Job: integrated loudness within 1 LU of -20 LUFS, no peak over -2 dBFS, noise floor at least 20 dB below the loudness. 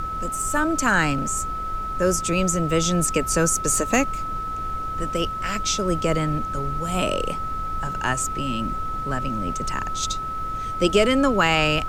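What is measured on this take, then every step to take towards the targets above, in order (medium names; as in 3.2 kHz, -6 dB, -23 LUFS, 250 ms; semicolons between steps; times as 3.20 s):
steady tone 1.3 kHz; tone level -27 dBFS; noise floor -29 dBFS; noise floor target -43 dBFS; loudness -23.0 LUFS; peak level -6.5 dBFS; loudness target -20.0 LUFS
-> band-stop 1.3 kHz, Q 30; noise print and reduce 14 dB; trim +3 dB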